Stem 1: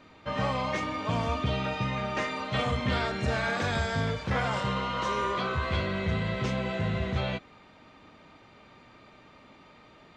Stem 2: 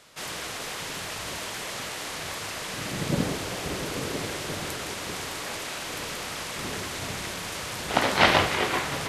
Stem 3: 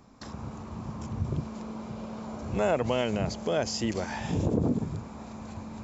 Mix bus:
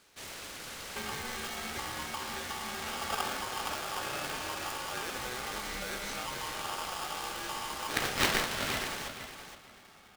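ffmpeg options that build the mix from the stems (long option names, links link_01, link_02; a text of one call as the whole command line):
ffmpeg -i stem1.wav -i stem2.wav -i stem3.wav -filter_complex "[0:a]adelay=700,volume=-3.5dB[link_01];[1:a]volume=-9dB,asplit=2[link_02][link_03];[link_03]volume=-9dB[link_04];[2:a]adelay=2350,volume=-5.5dB[link_05];[link_01][link_05]amix=inputs=2:normalize=0,acompressor=threshold=-37dB:ratio=6,volume=0dB[link_06];[link_04]aecho=0:1:469|938|1407:1|0.21|0.0441[link_07];[link_02][link_06][link_07]amix=inputs=3:normalize=0,aeval=exprs='val(0)*sgn(sin(2*PI*1000*n/s))':channel_layout=same" out.wav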